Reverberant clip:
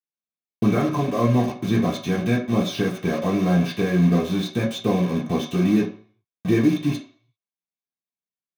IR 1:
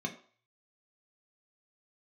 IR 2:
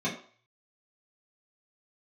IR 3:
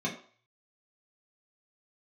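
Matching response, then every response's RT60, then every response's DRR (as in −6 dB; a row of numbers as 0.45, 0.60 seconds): 3; 0.45, 0.45, 0.45 seconds; 1.5, −8.5, −4.5 decibels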